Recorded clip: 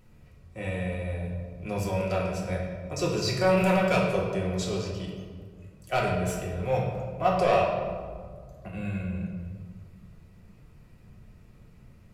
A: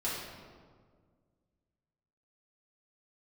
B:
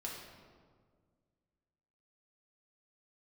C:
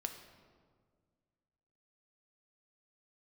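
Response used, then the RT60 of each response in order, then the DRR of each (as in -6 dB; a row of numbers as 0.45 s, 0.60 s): B; 1.8 s, 1.8 s, 1.8 s; -9.0 dB, -3.5 dB, 5.0 dB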